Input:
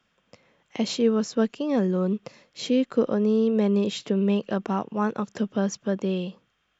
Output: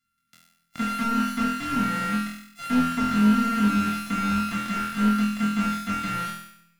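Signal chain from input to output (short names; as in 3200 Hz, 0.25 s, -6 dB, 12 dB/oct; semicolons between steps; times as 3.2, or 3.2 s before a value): sample sorter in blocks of 64 samples; elliptic band-stop 260–1300 Hz; low shelf 470 Hz -5 dB; sample leveller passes 2; resonator 170 Hz, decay 1.4 s, mix 50%; flutter echo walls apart 4.1 m, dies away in 0.68 s; slew limiter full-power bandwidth 62 Hz; gain +2 dB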